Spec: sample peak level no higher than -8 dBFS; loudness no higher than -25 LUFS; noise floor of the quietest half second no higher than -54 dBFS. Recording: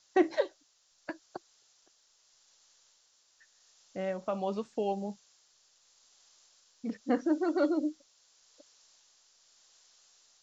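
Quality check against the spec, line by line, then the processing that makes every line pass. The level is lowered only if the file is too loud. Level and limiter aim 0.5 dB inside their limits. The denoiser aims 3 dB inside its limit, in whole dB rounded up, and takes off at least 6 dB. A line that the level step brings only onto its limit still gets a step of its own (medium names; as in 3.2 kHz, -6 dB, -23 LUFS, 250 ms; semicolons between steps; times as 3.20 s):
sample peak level -14.5 dBFS: pass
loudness -33.0 LUFS: pass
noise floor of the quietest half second -69 dBFS: pass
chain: none needed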